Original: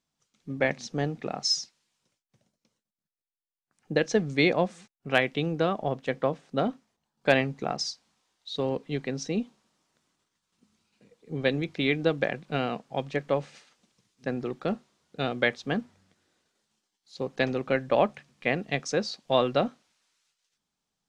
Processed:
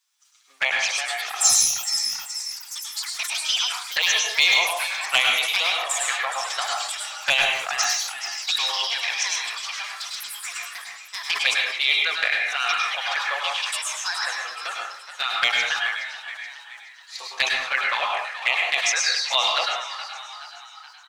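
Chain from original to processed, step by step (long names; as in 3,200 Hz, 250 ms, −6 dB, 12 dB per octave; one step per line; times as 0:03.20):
high-pass filter 960 Hz 24 dB per octave
spectral tilt +2 dB per octave
delay with pitch and tempo change per echo 387 ms, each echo +6 semitones, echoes 3, each echo −6 dB
in parallel at −3 dB: hard clipping −15.5 dBFS, distortion −18 dB
on the sum: echo with shifted repeats 423 ms, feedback 49%, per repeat +62 Hz, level −12 dB
flanger swept by the level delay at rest 8.3 ms, full sweep at −21.5 dBFS
dense smooth reverb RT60 0.55 s, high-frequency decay 0.55×, pre-delay 90 ms, DRR −1 dB
level that may fall only so fast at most 67 dB per second
level +5 dB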